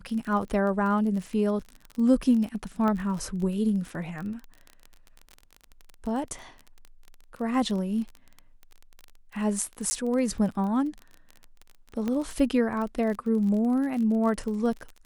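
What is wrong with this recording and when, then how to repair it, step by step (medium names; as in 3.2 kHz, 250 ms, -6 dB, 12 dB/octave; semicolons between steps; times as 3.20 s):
crackle 27 per s -33 dBFS
2.88 s: pop -18 dBFS
9.90–9.91 s: dropout 10 ms
12.08 s: pop -18 dBFS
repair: de-click; interpolate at 9.90 s, 10 ms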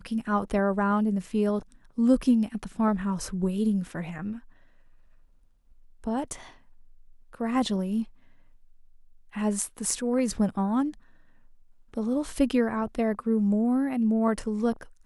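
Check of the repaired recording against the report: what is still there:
nothing left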